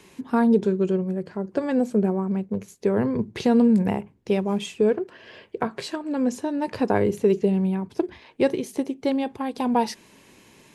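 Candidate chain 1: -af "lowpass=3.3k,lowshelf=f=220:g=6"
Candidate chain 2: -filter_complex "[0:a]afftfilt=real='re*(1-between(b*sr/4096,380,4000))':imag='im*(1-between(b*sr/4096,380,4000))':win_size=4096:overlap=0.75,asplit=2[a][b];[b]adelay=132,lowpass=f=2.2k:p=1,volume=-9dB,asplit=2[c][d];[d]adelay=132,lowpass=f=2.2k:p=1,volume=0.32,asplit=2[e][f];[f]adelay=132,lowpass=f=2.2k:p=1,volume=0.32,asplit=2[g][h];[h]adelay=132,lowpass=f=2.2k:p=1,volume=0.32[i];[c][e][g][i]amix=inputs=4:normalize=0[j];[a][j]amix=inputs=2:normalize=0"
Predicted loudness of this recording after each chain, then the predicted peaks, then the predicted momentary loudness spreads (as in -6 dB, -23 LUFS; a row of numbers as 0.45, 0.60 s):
-22.0, -25.5 LUFS; -7.0, -10.0 dBFS; 11, 12 LU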